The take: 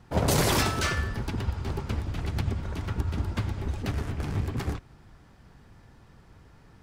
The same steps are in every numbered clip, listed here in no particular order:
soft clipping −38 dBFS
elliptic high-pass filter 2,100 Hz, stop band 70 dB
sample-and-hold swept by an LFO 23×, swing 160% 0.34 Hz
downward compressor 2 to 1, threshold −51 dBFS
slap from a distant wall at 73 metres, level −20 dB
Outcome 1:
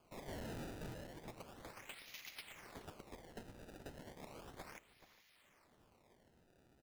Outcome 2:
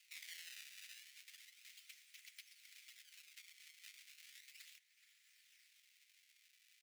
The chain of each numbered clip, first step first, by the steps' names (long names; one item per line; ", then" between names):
elliptic high-pass filter, then sample-and-hold swept by an LFO, then slap from a distant wall, then soft clipping, then downward compressor
sample-and-hold swept by an LFO, then slap from a distant wall, then downward compressor, then elliptic high-pass filter, then soft clipping